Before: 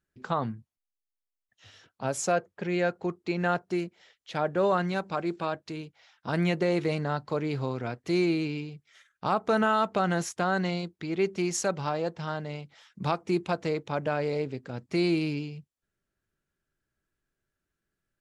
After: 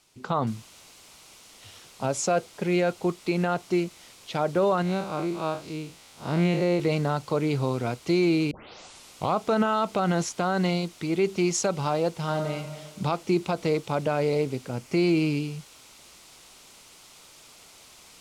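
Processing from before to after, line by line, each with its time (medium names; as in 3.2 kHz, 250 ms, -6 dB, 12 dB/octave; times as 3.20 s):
0.47 s: noise floor step -65 dB -52 dB
4.82–6.80 s: spectral blur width 110 ms
8.51 s: tape start 0.87 s
12.12–12.58 s: reverb throw, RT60 1.4 s, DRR 5.5 dB
14.69–15.31 s: peaking EQ 3.8 kHz -7.5 dB 0.26 oct
whole clip: low-pass 8.3 kHz 12 dB/octave; peak limiter -18.5 dBFS; peaking EQ 1.7 kHz -8.5 dB 0.29 oct; trim +5 dB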